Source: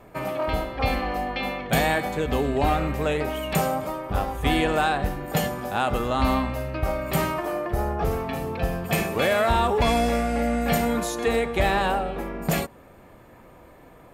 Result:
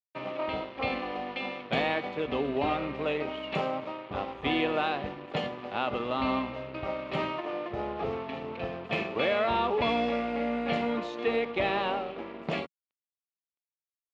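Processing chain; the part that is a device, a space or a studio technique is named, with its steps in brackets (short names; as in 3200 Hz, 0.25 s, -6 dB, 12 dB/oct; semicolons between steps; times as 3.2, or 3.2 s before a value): blown loudspeaker (crossover distortion -37.5 dBFS; speaker cabinet 160–3800 Hz, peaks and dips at 170 Hz -6 dB, 770 Hz -3 dB, 1600 Hz -7 dB, 2700 Hz +3 dB); gain -3 dB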